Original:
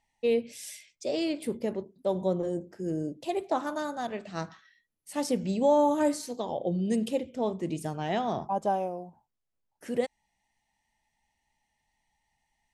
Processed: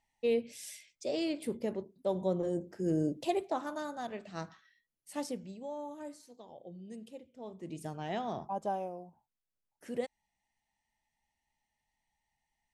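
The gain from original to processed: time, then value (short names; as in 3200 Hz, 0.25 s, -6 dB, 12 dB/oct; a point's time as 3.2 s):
2.27 s -4 dB
3.19 s +3 dB
3.53 s -6 dB
5.18 s -6 dB
5.59 s -19 dB
7.33 s -19 dB
7.85 s -7 dB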